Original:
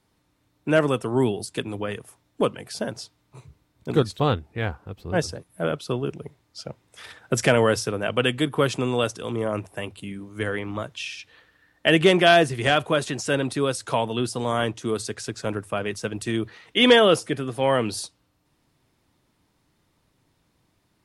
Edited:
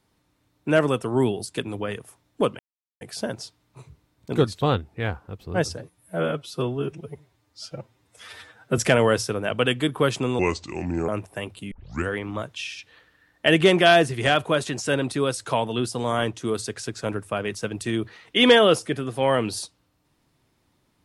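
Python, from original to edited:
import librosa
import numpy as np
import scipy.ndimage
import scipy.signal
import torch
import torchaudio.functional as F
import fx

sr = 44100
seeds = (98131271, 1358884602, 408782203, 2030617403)

y = fx.edit(x, sr, fx.insert_silence(at_s=2.59, length_s=0.42),
    fx.stretch_span(start_s=5.36, length_s=2.0, factor=1.5),
    fx.speed_span(start_s=8.97, length_s=0.52, speed=0.75),
    fx.tape_start(start_s=10.12, length_s=0.37), tone=tone)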